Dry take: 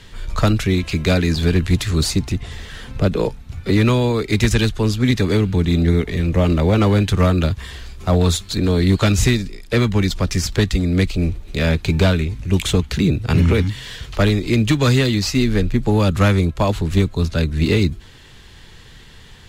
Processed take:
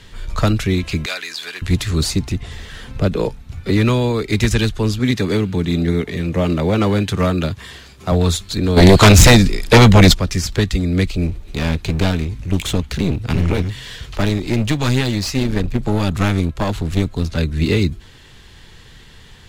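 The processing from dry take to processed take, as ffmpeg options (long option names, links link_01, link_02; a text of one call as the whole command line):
ffmpeg -i in.wav -filter_complex "[0:a]asettb=1/sr,asplit=3[link_01][link_02][link_03];[link_01]atrim=end=1.064[link_04];[link_02]atrim=start=1.06:end=1.62,asetpts=PTS-STARTPTS,afade=type=in:duration=0.004:curve=qsin,afade=type=out:start_time=0.556:duration=0.004:curve=qsin,highpass=1200[link_05];[link_03]atrim=start=1.616[link_06];[link_04][link_05]acrossfade=duration=0.004:curve1=hsin:curve2=qsin[link_07];[link_07][link_06]acrossfade=duration=0.004:curve1=qsin:curve2=hsin,asettb=1/sr,asplit=3[link_08][link_09][link_10];[link_08]atrim=end=4.994[link_11];[link_09]atrim=start=4.99:end=8.12,asetpts=PTS-STARTPTS,afade=type=in:duration=0.004:curve=qsin,afade=type=out:start_time=3.126:duration=0.004:curve=qsin,highpass=110[link_12];[link_10]atrim=start=8.116[link_13];[link_11][link_12]acrossfade=duration=0.004:curve1=hsin:curve2=qsin[link_14];[link_14][link_13]acrossfade=duration=0.004:curve1=qsin:curve2=hsin,asplit=3[link_15][link_16][link_17];[link_15]afade=type=out:start_time=8.76:duration=0.02[link_18];[link_16]aeval=exprs='0.708*sin(PI/2*3.16*val(0)/0.708)':channel_layout=same,afade=type=in:start_time=8.76:duration=0.02,afade=type=out:start_time=10.13:duration=0.02[link_19];[link_17]afade=type=in:start_time=10.13:duration=0.02[link_20];[link_18][link_19][link_20]amix=inputs=3:normalize=0,asettb=1/sr,asplit=3[link_21][link_22][link_23];[link_21]atrim=end=11.274[link_24];[link_22]atrim=start=11.27:end=17.38,asetpts=PTS-STARTPTS,afade=type=in:duration=0.004:curve=qsin,afade=type=out:start_time=6.106:duration=0.004:curve=qsin,aeval=exprs='clip(val(0),-1,0.0794)':channel_layout=same[link_25];[link_23]atrim=start=17.376[link_26];[link_24][link_25]acrossfade=duration=0.004:curve1=hsin:curve2=qsin[link_27];[link_27][link_26]acrossfade=duration=0.004:curve1=qsin:curve2=hsin" out.wav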